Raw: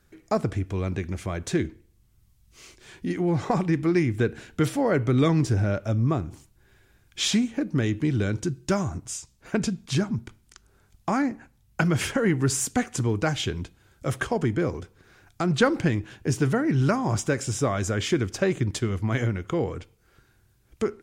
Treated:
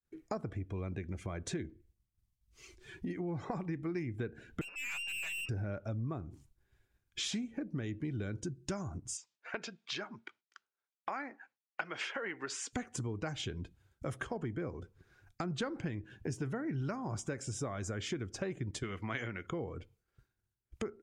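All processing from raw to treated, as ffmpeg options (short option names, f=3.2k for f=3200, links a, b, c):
-filter_complex "[0:a]asettb=1/sr,asplit=3[a][b][c];[a]atrim=end=4.614[d];[b]atrim=start=4.61:end=5.49,asetpts=PTS-STARTPTS,afade=t=in:d=0.004:c=qsin,afade=t=out:st=0.876:d=0.004:c=qsin,lowpass=f=2.5k:t=q:w=0.5098,lowpass=f=2.5k:t=q:w=0.6013,lowpass=f=2.5k:t=q:w=0.9,lowpass=f=2.5k:t=q:w=2.563,afreqshift=-2900,aeval=exprs='(tanh(39.8*val(0)+0.3)-tanh(0.3))/39.8':c=same[e];[c]atrim=start=5.486[f];[d][e]acrossfade=d=0.004:c1=hsin:c2=qsin[g];[g][f]acrossfade=d=0.004:c1=qsin:c2=hsin,asettb=1/sr,asplit=3[h][i][j];[h]atrim=end=9.174[k];[i]atrim=start=9.17:end=12.73,asetpts=PTS-STARTPTS,afade=t=in:d=0.004:c=qsin,afade=t=out:st=3.556:d=0.004:c=qsin,highpass=550,lowpass=3.1k,highshelf=f=2.4k:g=9.5[l];[j]atrim=start=12.726[m];[k][l]acrossfade=d=0.004:c1=hsin:c2=qsin[n];[n][m]acrossfade=d=0.004:c1=qsin:c2=hsin,asettb=1/sr,asplit=3[o][p][q];[o]atrim=end=18.834[r];[p]atrim=start=18.83:end=19.47,asetpts=PTS-STARTPTS,afade=t=in:d=0.004:c=qsin,afade=t=out:st=0.636:d=0.004:c=qsin,highpass=f=190:p=1,equalizer=f=2.3k:t=o:w=2.5:g=9[s];[q]atrim=start=19.466[t];[r][s]acrossfade=d=0.004:c1=hsin:c2=qsin[u];[u][t]acrossfade=d=0.004:c1=qsin:c2=hsin,agate=range=-33dB:threshold=-53dB:ratio=3:detection=peak,afftdn=nr=13:nf=-45,acompressor=threshold=-40dB:ratio=3"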